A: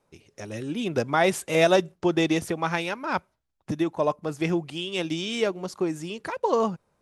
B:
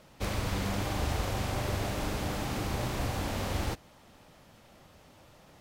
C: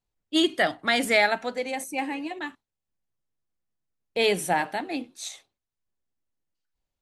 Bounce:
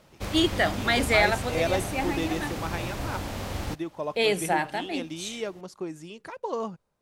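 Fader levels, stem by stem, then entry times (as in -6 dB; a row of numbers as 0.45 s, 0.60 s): -8.0 dB, -0.5 dB, -1.0 dB; 0.00 s, 0.00 s, 0.00 s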